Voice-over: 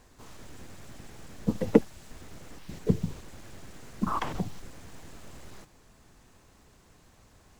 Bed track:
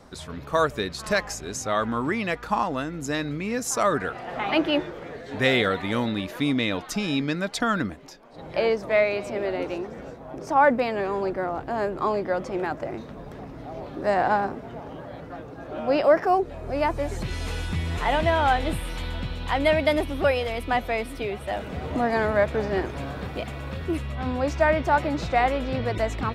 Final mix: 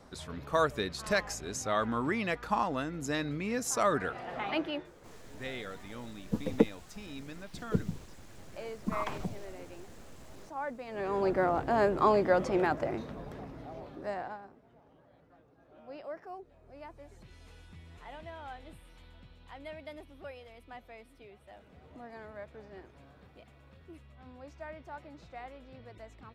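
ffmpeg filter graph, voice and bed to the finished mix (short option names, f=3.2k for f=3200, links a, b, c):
-filter_complex "[0:a]adelay=4850,volume=-5dB[a];[1:a]volume=14dB,afade=t=out:st=4.22:d=0.69:silence=0.199526,afade=t=in:st=10.86:d=0.52:silence=0.105925,afade=t=out:st=12.54:d=1.84:silence=0.0630957[b];[a][b]amix=inputs=2:normalize=0"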